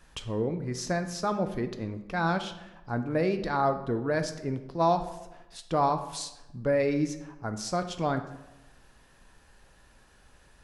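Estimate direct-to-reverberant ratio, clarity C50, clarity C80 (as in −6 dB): 8.0 dB, 11.0 dB, 13.5 dB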